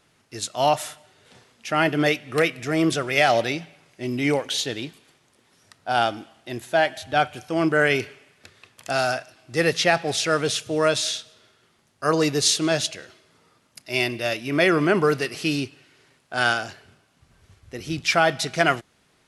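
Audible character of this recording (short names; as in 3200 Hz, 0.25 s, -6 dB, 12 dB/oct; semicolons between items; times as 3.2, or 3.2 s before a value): noise floor -63 dBFS; spectral tilt -3.5 dB/oct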